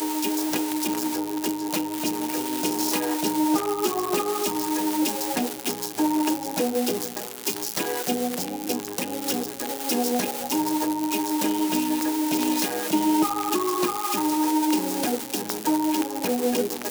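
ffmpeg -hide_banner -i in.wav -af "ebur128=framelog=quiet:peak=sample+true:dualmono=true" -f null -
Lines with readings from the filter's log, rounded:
Integrated loudness:
  I:         -21.9 LUFS
  Threshold: -31.9 LUFS
Loudness range:
  LRA:         3.0 LU
  Threshold: -41.8 LUFS
  LRA low:   -23.5 LUFS
  LRA high:  -20.4 LUFS
Sample peak:
  Peak:       -7.8 dBFS
True peak:
  Peak:       -7.8 dBFS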